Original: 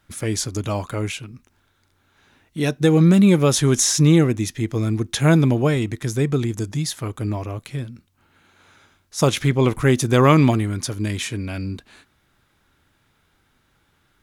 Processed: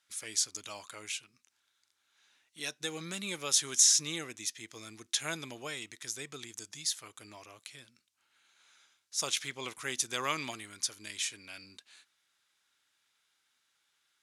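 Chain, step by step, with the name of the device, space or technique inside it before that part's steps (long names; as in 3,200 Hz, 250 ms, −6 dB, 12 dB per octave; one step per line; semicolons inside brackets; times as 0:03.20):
piezo pickup straight into a mixer (low-pass filter 7,100 Hz 12 dB per octave; first difference)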